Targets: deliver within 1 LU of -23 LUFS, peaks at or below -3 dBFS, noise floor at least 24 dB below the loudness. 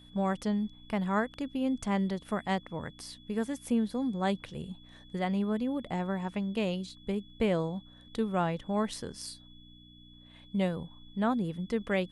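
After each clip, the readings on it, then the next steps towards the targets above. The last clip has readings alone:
hum 60 Hz; highest harmonic 300 Hz; hum level -56 dBFS; steady tone 3.4 kHz; tone level -57 dBFS; loudness -33.0 LUFS; peak level -16.5 dBFS; loudness target -23.0 LUFS
-> de-hum 60 Hz, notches 5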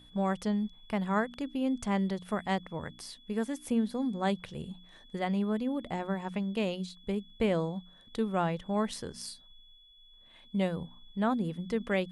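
hum not found; steady tone 3.4 kHz; tone level -57 dBFS
-> band-stop 3.4 kHz, Q 30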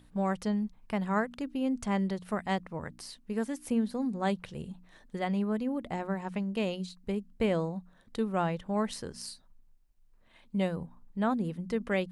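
steady tone not found; loudness -33.0 LUFS; peak level -17.0 dBFS; loudness target -23.0 LUFS
-> trim +10 dB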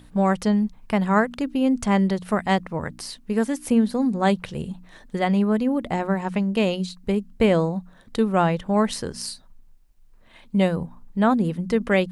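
loudness -23.0 LUFS; peak level -7.0 dBFS; noise floor -51 dBFS

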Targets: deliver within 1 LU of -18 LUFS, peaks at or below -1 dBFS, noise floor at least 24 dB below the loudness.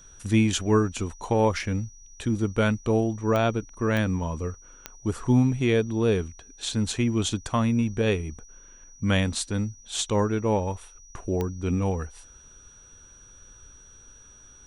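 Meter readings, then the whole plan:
clicks found 4; steady tone 5.8 kHz; tone level -50 dBFS; loudness -26.0 LUFS; peak level -10.0 dBFS; loudness target -18.0 LUFS
-> de-click; band-stop 5.8 kHz, Q 30; trim +8 dB

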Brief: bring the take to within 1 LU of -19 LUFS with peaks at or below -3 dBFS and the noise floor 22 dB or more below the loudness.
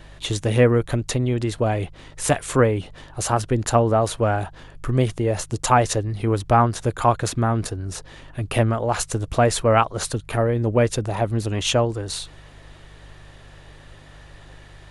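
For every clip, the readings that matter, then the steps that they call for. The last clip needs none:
hum 50 Hz; highest harmonic 150 Hz; hum level -45 dBFS; loudness -21.5 LUFS; peak level -2.5 dBFS; loudness target -19.0 LUFS
-> de-hum 50 Hz, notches 3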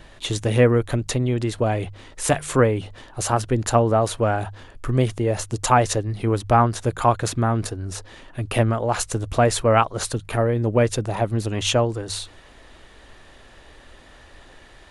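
hum not found; loudness -22.0 LUFS; peak level -2.5 dBFS; loudness target -19.0 LUFS
-> trim +3 dB; peak limiter -3 dBFS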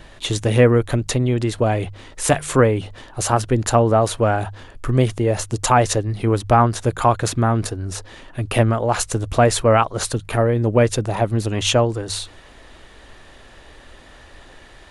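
loudness -19.0 LUFS; peak level -3.0 dBFS; noise floor -45 dBFS

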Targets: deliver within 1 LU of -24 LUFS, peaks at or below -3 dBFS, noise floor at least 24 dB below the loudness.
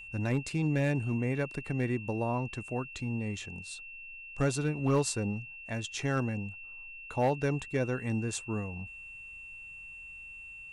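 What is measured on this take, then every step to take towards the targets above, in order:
clipped samples 0.3%; clipping level -20.5 dBFS; steady tone 2.7 kHz; tone level -44 dBFS; loudness -33.0 LUFS; peak level -20.5 dBFS; loudness target -24.0 LUFS
-> clip repair -20.5 dBFS; band-stop 2.7 kHz, Q 30; trim +9 dB

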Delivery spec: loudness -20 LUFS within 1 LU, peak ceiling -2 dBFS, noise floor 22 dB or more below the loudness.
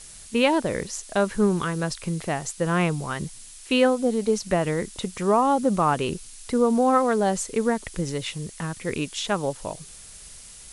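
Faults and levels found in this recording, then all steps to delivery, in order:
noise floor -44 dBFS; noise floor target -47 dBFS; loudness -24.5 LUFS; peak level -7.0 dBFS; loudness target -20.0 LUFS
-> noise print and reduce 6 dB; trim +4.5 dB

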